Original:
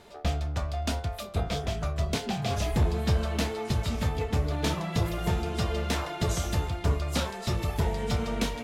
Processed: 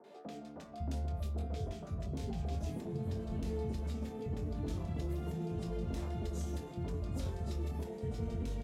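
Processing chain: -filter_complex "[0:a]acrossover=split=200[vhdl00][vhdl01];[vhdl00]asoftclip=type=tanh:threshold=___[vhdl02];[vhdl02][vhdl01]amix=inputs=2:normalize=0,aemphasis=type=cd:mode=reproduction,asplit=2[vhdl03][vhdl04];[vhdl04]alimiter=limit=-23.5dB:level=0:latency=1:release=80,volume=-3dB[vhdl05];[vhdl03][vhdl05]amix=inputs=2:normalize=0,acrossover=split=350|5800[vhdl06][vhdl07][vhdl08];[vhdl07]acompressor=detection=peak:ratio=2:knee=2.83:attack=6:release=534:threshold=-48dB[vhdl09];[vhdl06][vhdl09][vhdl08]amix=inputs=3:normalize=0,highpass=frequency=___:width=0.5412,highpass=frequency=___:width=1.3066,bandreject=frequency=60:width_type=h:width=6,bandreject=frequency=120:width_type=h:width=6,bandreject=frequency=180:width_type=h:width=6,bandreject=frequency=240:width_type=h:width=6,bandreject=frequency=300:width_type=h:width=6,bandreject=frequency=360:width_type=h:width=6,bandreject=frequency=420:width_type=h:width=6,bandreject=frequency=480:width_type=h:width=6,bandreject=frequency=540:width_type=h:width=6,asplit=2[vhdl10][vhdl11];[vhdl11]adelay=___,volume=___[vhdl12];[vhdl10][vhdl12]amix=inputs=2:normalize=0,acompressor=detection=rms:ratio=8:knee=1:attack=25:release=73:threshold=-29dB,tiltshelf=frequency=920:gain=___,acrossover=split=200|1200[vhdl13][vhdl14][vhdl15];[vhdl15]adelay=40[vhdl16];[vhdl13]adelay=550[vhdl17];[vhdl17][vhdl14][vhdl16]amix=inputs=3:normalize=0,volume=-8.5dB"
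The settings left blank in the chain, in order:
-32dB, 45, 45, 23, -7dB, 3.5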